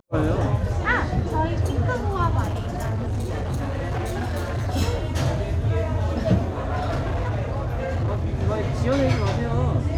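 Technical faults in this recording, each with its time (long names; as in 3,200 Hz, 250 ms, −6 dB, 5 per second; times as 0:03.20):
0:02.43–0:04.69: clipping −22.5 dBFS
0:06.58–0:08.30: clipping −20.5 dBFS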